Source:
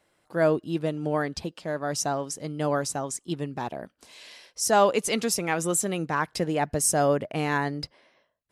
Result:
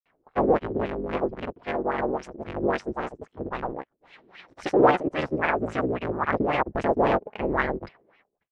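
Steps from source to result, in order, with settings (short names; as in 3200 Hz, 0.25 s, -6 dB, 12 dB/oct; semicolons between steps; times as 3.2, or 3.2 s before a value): cycle switcher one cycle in 3, inverted; grains, pitch spread up and down by 0 st; LFO low-pass sine 3.7 Hz 340–2700 Hz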